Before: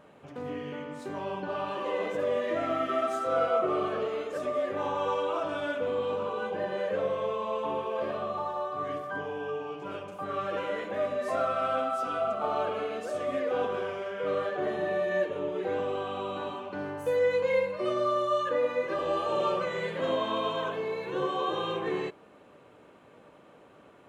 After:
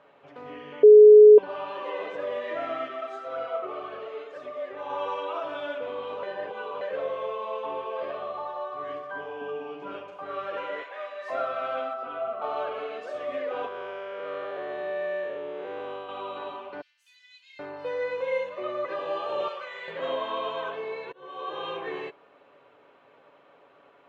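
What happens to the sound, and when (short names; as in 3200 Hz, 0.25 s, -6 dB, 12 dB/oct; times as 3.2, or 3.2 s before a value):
0.83–1.38 bleep 423 Hz -6 dBFS
2.88–4.9 flange 1.9 Hz, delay 0.2 ms, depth 2.4 ms, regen +68%
6.23–6.81 reverse
9.41–10.03 bell 230 Hz +13.5 dB 0.68 oct
10.82–11.3 HPF 810 Hz
11.93–12.42 air absorption 310 m
13.68–16.09 time blur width 0.233 s
16.81–18.85 bands offset in time highs, lows 0.78 s, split 3300 Hz
19.48–19.88 HPF 1400 Hz 6 dB/oct
21.12–21.67 fade in
whole clip: three-band isolator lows -13 dB, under 400 Hz, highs -23 dB, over 4900 Hz; comb 7.2 ms, depth 33%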